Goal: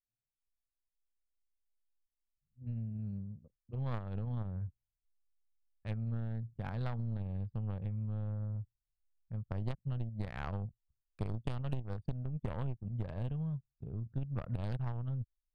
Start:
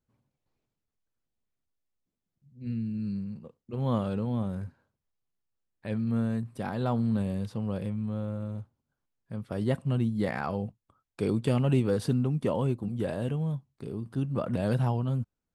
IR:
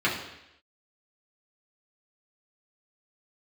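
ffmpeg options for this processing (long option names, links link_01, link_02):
-af "aeval=exprs='0.224*(cos(1*acos(clip(val(0)/0.224,-1,1)))-cos(1*PI/2))+0.0631*(cos(3*acos(clip(val(0)/0.224,-1,1)))-cos(3*PI/2))':channel_layout=same,asubboost=boost=8:cutoff=100,acompressor=threshold=-38dB:ratio=10,anlmdn=0.000631,volume=5dB"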